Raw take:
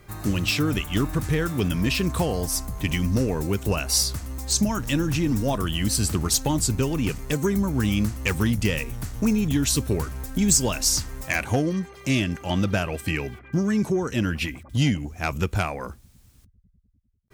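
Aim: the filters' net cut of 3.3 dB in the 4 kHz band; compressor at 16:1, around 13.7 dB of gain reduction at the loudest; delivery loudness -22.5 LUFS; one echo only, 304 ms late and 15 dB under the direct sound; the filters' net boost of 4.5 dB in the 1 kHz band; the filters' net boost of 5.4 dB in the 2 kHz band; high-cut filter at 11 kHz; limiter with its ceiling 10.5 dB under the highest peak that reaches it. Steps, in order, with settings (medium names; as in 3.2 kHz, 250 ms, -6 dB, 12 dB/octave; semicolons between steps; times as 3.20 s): low-pass 11 kHz; peaking EQ 1 kHz +4 dB; peaking EQ 2 kHz +8.5 dB; peaking EQ 4 kHz -8 dB; compression 16:1, threshold -30 dBFS; peak limiter -25.5 dBFS; delay 304 ms -15 dB; trim +13 dB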